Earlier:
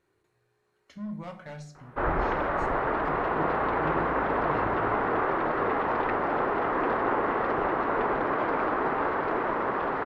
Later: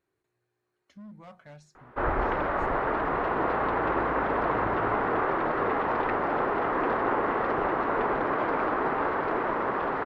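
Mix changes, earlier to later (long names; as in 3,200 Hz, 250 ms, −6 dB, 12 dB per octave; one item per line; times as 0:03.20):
speech −4.5 dB
reverb: off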